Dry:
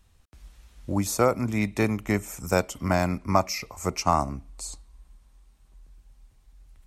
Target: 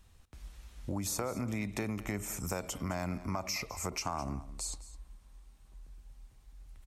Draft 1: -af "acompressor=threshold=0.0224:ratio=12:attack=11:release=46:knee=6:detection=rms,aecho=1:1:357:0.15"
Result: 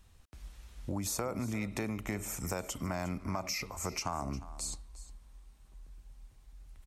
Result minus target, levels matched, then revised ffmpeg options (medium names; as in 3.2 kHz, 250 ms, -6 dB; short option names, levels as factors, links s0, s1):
echo 146 ms late
-af "acompressor=threshold=0.0224:ratio=12:attack=11:release=46:knee=6:detection=rms,aecho=1:1:211:0.15"